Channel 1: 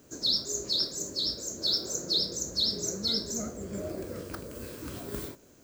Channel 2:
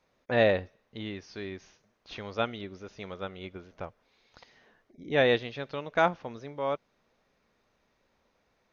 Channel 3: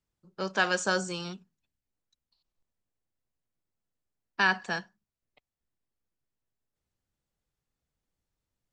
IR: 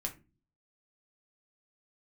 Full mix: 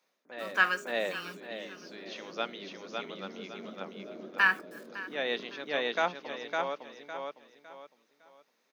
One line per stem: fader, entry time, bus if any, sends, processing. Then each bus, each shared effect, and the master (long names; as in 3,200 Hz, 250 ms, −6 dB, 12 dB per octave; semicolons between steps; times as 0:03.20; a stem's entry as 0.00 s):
−8.5 dB, 0.25 s, no send, echo send −6 dB, low-pass filter 1,600 Hz 24 dB per octave
−5.0 dB, 0.00 s, send −23.5 dB, echo send −3 dB, spectral tilt +2 dB per octave; automatic ducking −15 dB, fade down 0.30 s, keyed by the third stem
−13.0 dB, 0.00 s, send −4 dB, echo send −12.5 dB, flat-topped bell 1,700 Hz +12 dB; amplitude tremolo 1.6 Hz, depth 99%; bit-depth reduction 8 bits, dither none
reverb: on, RT60 0.30 s, pre-delay 5 ms
echo: repeating echo 557 ms, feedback 31%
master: Butterworth high-pass 180 Hz 36 dB per octave; high-shelf EQ 7,000 Hz +4 dB